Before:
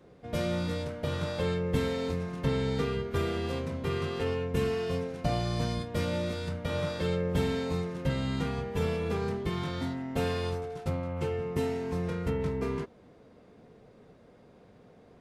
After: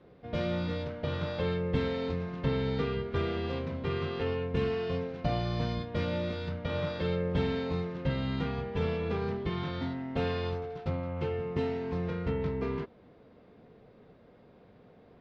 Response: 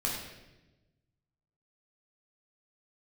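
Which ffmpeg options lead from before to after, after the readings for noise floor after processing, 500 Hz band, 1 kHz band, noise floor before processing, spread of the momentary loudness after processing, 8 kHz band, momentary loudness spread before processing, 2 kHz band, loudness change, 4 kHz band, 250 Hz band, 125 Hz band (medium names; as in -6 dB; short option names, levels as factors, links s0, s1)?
-58 dBFS, -1.0 dB, -1.0 dB, -57 dBFS, 4 LU, under -15 dB, 4 LU, -1.0 dB, -1.0 dB, -2.0 dB, -1.0 dB, -1.0 dB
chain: -af "lowpass=f=4400:w=0.5412,lowpass=f=4400:w=1.3066,volume=0.891"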